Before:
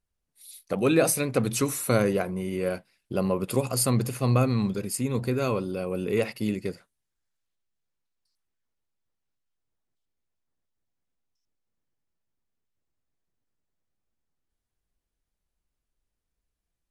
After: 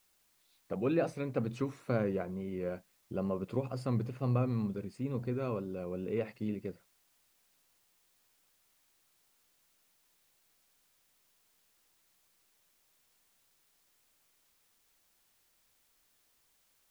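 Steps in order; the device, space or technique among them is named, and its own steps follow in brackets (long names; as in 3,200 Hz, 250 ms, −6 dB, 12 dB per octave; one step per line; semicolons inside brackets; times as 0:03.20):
cassette deck with a dirty head (head-to-tape spacing loss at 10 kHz 30 dB; tape wow and flutter; white noise bed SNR 33 dB)
level −7.5 dB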